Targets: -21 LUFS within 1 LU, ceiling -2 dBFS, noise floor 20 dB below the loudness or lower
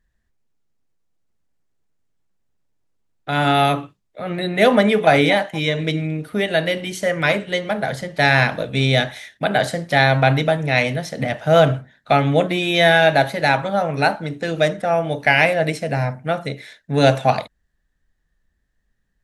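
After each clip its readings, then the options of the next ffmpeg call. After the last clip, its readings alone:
loudness -18.5 LUFS; peak level -1.0 dBFS; loudness target -21.0 LUFS
-> -af "volume=0.75"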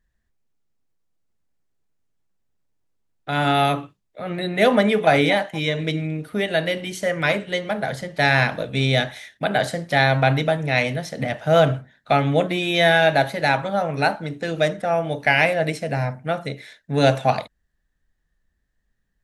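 loudness -21.0 LUFS; peak level -3.5 dBFS; noise floor -72 dBFS

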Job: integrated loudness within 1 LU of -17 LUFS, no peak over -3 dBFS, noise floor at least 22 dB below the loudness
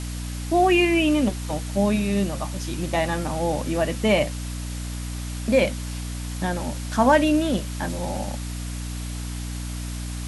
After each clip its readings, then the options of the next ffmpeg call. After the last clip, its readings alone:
hum 60 Hz; highest harmonic 300 Hz; hum level -28 dBFS; noise floor -31 dBFS; noise floor target -47 dBFS; loudness -24.5 LUFS; peak level -6.5 dBFS; loudness target -17.0 LUFS
-> -af "bandreject=f=60:t=h:w=6,bandreject=f=120:t=h:w=6,bandreject=f=180:t=h:w=6,bandreject=f=240:t=h:w=6,bandreject=f=300:t=h:w=6"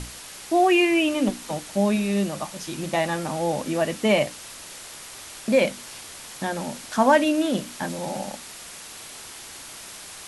hum not found; noise floor -41 dBFS; noise floor target -46 dBFS
-> -af "afftdn=nr=6:nf=-41"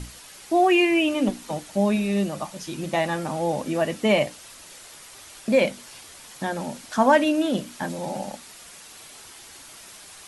noise floor -45 dBFS; noise floor target -46 dBFS
-> -af "afftdn=nr=6:nf=-45"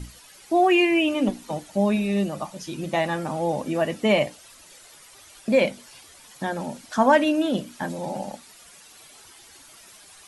noise floor -50 dBFS; loudness -23.5 LUFS; peak level -6.5 dBFS; loudness target -17.0 LUFS
-> -af "volume=2.11,alimiter=limit=0.708:level=0:latency=1"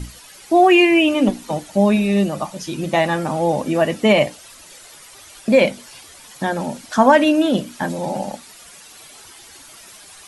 loudness -17.5 LUFS; peak level -3.0 dBFS; noise floor -43 dBFS

